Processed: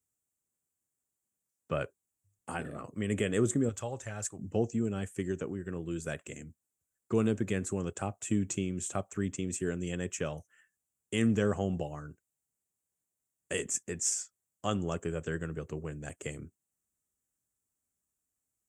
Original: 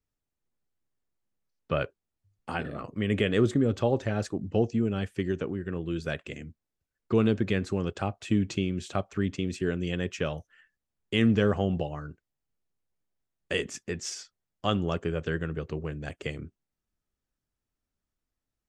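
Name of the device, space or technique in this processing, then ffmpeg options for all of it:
budget condenser microphone: -filter_complex "[0:a]highpass=70,highshelf=f=5800:t=q:w=3:g=10.5,asettb=1/sr,asplit=3[s0][s1][s2];[s0]atrim=end=3.694[s3];[s1]atrim=start=3.69:end=4.39,asetpts=PTS-STARTPTS,afade=t=in:d=0.004:c=qsin,afade=t=out:st=0.696:d=0.004:c=qsin,equalizer=f=290:t=o:w=2.2:g=-13.5[s4];[s2]atrim=start=4.386[s5];[s3][s4]acrossfade=d=0.004:c1=hsin:c2=qsin[s6];[s6][s5]acrossfade=d=0.004:c1=qsin:c2=hsin,volume=0.596"

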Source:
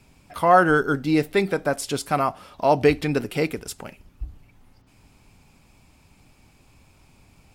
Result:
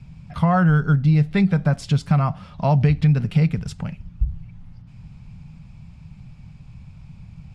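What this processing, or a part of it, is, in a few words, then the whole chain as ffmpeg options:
jukebox: -af "lowpass=5100,lowshelf=f=230:t=q:w=3:g=12.5,acompressor=threshold=0.2:ratio=4"

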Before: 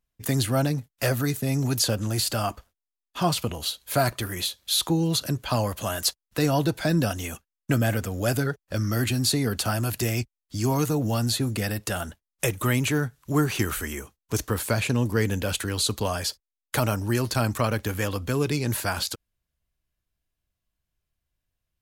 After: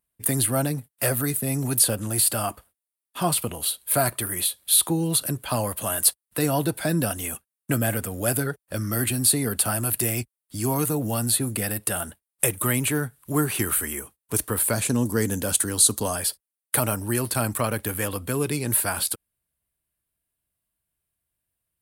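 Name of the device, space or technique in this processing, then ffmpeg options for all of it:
budget condenser microphone: -filter_complex "[0:a]highpass=f=110:p=1,highshelf=f=7700:t=q:w=3:g=7,asettb=1/sr,asplit=3[s0][s1][s2];[s0]atrim=end=14.734[s3];[s1]atrim=start=14.73:end=16.16,asetpts=PTS-STARTPTS,afade=t=in:d=0.004:c=qsin,afade=t=out:st=1.426:d=0.004:c=qsin,equalizer=f=250:t=o:w=0.67:g=4,equalizer=f=2500:t=o:w=0.67:g=-6,equalizer=f=6300:t=o:w=0.67:g=10[s4];[s2]atrim=start=16.156[s5];[s3][s4]acrossfade=d=0.004:c1=hsin:c2=qsin[s6];[s6][s5]acrossfade=d=0.004:c1=qsin:c2=hsin"

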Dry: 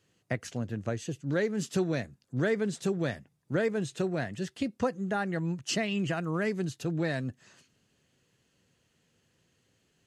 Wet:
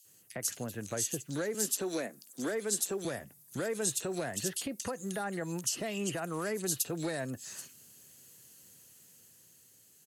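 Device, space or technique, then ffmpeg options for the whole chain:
FM broadcast chain: -filter_complex "[0:a]asettb=1/sr,asplit=3[s0][s1][s2];[s0]atrim=end=1.494[s3];[s1]atrim=start=1.49:end=3,asetpts=PTS-STARTPTS,afade=t=in:d=0.004:c=qsin,afade=t=out:st=1.506:d=0.004:c=qsin,highpass=f=220:w=0.5412,highpass=f=220:w=1.3066[s4];[s2]atrim=start=2.996[s5];[s3][s4]acrossfade=d=0.004:c1=hsin:c2=qsin[s6];[s6][s5]acrossfade=d=0.004:c1=qsin:c2=hsin,highpass=77,dynaudnorm=f=290:g=9:m=1.68,acrossover=split=350|1300[s7][s8][s9];[s7]acompressor=threshold=0.01:ratio=4[s10];[s8]acompressor=threshold=0.0316:ratio=4[s11];[s9]acompressor=threshold=0.00708:ratio=4[s12];[s10][s11][s12]amix=inputs=3:normalize=0,aemphasis=mode=production:type=50fm,alimiter=level_in=1.19:limit=0.0631:level=0:latency=1:release=154,volume=0.841,asoftclip=type=hard:threshold=0.0447,lowpass=f=15000:w=0.5412,lowpass=f=15000:w=1.3066,aemphasis=mode=production:type=50fm,acrossover=split=2900[s13][s14];[s13]adelay=50[s15];[s15][s14]amix=inputs=2:normalize=0"

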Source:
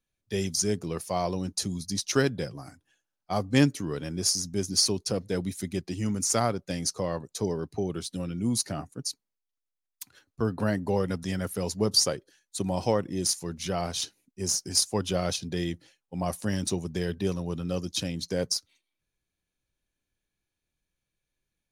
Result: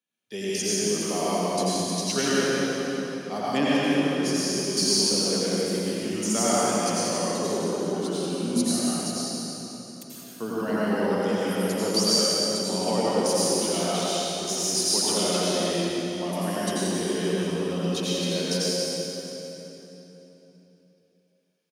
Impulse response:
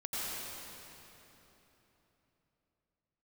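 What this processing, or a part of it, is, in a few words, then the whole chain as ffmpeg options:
PA in a hall: -filter_complex "[0:a]highpass=f=180:w=0.5412,highpass=f=180:w=1.3066,equalizer=f=2900:t=o:w=0.37:g=5,aecho=1:1:179:0.376[s0];[1:a]atrim=start_sample=2205[s1];[s0][s1]afir=irnorm=-1:irlink=0,asettb=1/sr,asplit=3[s2][s3][s4];[s2]atrim=end=3.574[s5];[s3]atrim=start=3.57:end=4.77,asetpts=PTS-STARTPTS,afade=t=in:d=0.004:c=qsin,afade=t=out:st=1.196:d=0.004:c=qsin,bass=f=250:g=-2,treble=f=4000:g=-6[s6];[s4]atrim=start=4.766[s7];[s5][s6]acrossfade=d=0.004:c1=hsin:c2=qsin[s8];[s8][s7]acrossfade=d=0.004:c1=qsin:c2=hsin,aecho=1:1:638:0.0944"

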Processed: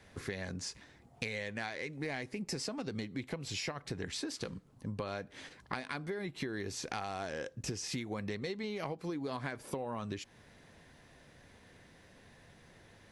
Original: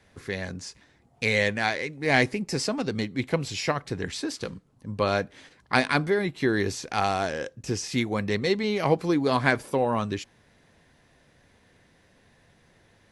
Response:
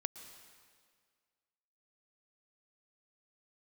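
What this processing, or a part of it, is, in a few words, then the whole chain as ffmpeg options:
serial compression, leveller first: -af "acompressor=threshold=0.0501:ratio=3,acompressor=threshold=0.0141:ratio=6,volume=1.12"

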